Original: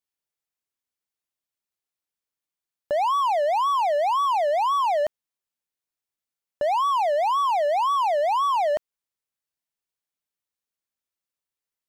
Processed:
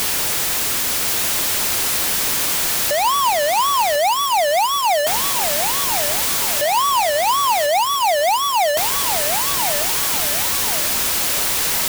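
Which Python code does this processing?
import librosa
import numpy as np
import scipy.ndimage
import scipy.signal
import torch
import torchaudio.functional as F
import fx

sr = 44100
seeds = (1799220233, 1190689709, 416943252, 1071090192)

p1 = np.sign(x) * np.sqrt(np.mean(np.square(x)))
p2 = p1 + fx.echo_feedback(p1, sr, ms=1051, feedback_pct=43, wet_db=-8.0, dry=0)
p3 = fx.dynamic_eq(p2, sr, hz=950.0, q=7.3, threshold_db=-44.0, ratio=4.0, max_db=4)
y = p3 * librosa.db_to_amplitude(8.0)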